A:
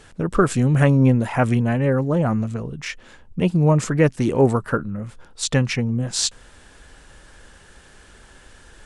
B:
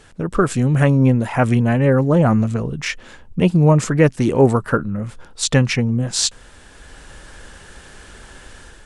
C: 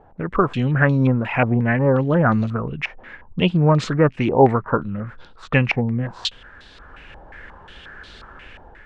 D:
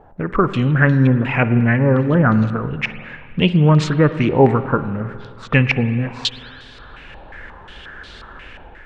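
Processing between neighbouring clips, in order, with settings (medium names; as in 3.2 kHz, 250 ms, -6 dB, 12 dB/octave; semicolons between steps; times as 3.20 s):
level rider gain up to 7 dB
step-sequenced low-pass 5.6 Hz 800–4000 Hz; trim -3.5 dB
dynamic bell 720 Hz, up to -6 dB, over -32 dBFS, Q 1.2; spring tank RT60 2.2 s, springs 46/51 ms, chirp 65 ms, DRR 11.5 dB; trim +3.5 dB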